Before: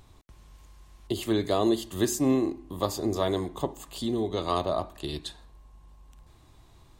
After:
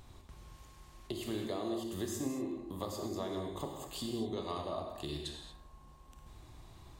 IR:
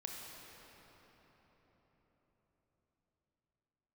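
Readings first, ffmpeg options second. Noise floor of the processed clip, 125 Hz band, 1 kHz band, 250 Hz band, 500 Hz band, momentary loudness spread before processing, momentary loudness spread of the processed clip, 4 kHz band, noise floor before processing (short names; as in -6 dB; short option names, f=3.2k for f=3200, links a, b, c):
-58 dBFS, -9.5 dB, -11.0 dB, -10.5 dB, -11.0 dB, 11 LU, 19 LU, -8.0 dB, -56 dBFS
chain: -filter_complex "[0:a]acompressor=threshold=-40dB:ratio=3[a];[1:a]atrim=start_sample=2205,afade=t=out:st=0.29:d=0.01,atrim=end_sample=13230[b];[a][b]afir=irnorm=-1:irlink=0,volume=4dB"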